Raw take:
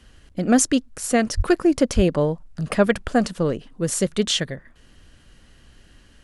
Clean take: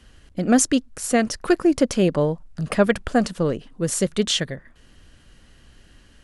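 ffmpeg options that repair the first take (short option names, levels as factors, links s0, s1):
-filter_complex "[0:a]asplit=3[s0][s1][s2];[s0]afade=t=out:st=1.36:d=0.02[s3];[s1]highpass=f=140:w=0.5412,highpass=f=140:w=1.3066,afade=t=in:st=1.36:d=0.02,afade=t=out:st=1.48:d=0.02[s4];[s2]afade=t=in:st=1.48:d=0.02[s5];[s3][s4][s5]amix=inputs=3:normalize=0,asplit=3[s6][s7][s8];[s6]afade=t=out:st=1.95:d=0.02[s9];[s7]highpass=f=140:w=0.5412,highpass=f=140:w=1.3066,afade=t=in:st=1.95:d=0.02,afade=t=out:st=2.07:d=0.02[s10];[s8]afade=t=in:st=2.07:d=0.02[s11];[s9][s10][s11]amix=inputs=3:normalize=0"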